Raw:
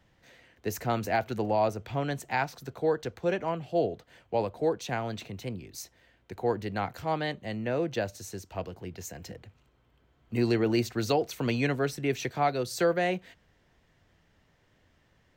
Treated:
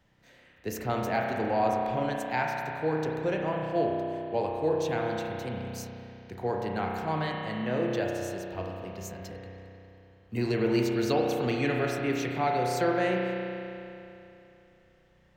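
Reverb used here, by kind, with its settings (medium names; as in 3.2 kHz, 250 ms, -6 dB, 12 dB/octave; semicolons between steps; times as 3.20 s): spring tank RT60 2.9 s, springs 32 ms, chirp 70 ms, DRR -1 dB; trim -2.5 dB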